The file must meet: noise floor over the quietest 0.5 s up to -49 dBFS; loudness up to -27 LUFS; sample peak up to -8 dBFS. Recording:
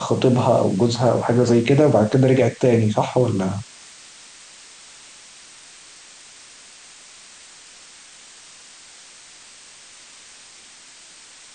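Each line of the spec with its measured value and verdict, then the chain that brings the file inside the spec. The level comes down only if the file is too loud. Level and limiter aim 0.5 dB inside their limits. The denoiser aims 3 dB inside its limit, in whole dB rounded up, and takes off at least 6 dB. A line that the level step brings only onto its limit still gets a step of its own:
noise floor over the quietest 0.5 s -45 dBFS: fail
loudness -18.0 LUFS: fail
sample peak -5.0 dBFS: fail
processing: trim -9.5 dB

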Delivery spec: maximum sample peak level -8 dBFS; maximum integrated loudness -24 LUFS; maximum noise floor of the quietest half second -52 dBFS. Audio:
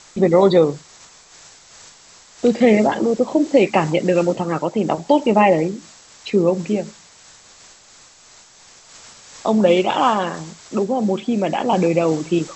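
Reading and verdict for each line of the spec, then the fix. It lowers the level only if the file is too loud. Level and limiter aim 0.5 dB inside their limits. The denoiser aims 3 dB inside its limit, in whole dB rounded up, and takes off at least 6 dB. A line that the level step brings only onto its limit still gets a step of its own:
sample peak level -2.0 dBFS: fail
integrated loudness -18.0 LUFS: fail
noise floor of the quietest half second -48 dBFS: fail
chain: trim -6.5 dB

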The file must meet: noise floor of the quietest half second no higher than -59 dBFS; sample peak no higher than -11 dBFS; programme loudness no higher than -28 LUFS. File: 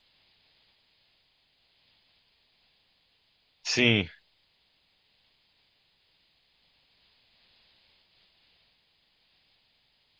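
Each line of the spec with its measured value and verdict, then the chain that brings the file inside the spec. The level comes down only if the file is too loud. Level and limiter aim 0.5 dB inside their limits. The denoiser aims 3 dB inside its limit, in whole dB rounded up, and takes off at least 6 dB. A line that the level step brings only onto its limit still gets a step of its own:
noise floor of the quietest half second -70 dBFS: pass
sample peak -6.0 dBFS: fail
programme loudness -25.5 LUFS: fail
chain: trim -3 dB; peak limiter -11.5 dBFS

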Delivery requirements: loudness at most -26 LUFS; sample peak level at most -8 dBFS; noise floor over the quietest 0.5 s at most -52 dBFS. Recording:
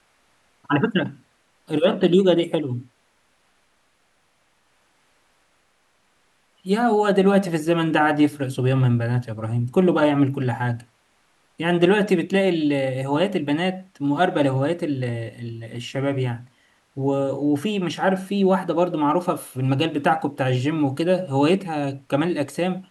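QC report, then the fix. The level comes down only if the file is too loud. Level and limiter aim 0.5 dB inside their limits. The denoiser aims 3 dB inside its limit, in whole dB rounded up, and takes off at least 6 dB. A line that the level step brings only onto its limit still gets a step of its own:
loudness -21.5 LUFS: fail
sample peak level -5.0 dBFS: fail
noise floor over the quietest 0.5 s -64 dBFS: pass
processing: trim -5 dB

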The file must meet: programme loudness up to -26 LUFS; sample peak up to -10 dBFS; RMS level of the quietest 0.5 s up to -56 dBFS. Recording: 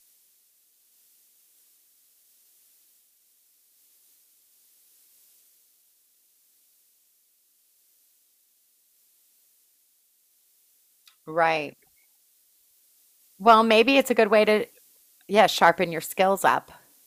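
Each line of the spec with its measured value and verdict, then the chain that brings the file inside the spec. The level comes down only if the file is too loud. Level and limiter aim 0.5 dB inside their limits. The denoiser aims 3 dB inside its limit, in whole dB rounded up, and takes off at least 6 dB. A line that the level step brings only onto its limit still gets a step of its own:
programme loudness -21.0 LUFS: fail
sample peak -4.0 dBFS: fail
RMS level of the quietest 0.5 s -66 dBFS: pass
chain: trim -5.5 dB; peak limiter -10.5 dBFS

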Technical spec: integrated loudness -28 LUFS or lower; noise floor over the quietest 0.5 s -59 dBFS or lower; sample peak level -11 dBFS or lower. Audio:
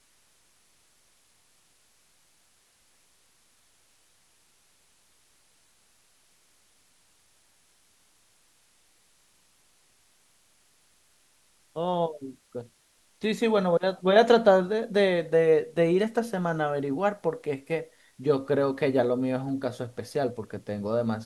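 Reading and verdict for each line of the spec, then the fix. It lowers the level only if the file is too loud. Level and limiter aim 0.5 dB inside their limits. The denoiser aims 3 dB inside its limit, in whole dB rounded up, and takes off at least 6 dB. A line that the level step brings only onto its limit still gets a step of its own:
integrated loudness -26.0 LUFS: fail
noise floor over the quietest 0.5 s -64 dBFS: pass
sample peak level -6.5 dBFS: fail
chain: trim -2.5 dB; peak limiter -11.5 dBFS

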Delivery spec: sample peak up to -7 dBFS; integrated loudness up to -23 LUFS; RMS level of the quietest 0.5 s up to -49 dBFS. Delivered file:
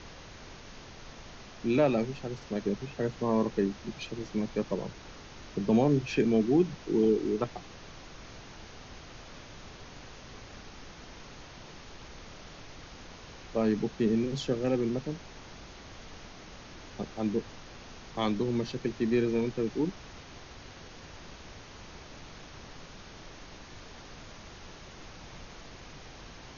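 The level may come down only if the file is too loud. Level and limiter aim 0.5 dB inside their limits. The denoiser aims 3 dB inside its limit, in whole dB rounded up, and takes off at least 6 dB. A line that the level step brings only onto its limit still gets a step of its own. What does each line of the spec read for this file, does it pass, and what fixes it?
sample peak -13.0 dBFS: pass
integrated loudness -30.0 LUFS: pass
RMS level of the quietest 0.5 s -48 dBFS: fail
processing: noise reduction 6 dB, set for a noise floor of -48 dBFS

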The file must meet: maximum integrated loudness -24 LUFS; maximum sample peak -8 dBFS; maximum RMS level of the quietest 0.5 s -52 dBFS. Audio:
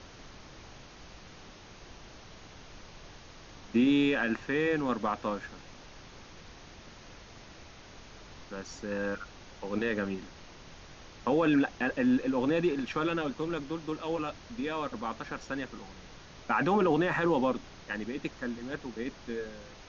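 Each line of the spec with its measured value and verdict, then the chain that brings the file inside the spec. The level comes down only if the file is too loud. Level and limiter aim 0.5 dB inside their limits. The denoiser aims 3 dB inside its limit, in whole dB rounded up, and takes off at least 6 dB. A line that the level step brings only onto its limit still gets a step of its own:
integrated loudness -31.0 LUFS: pass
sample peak -15.5 dBFS: pass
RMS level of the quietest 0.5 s -50 dBFS: fail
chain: noise reduction 6 dB, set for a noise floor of -50 dBFS

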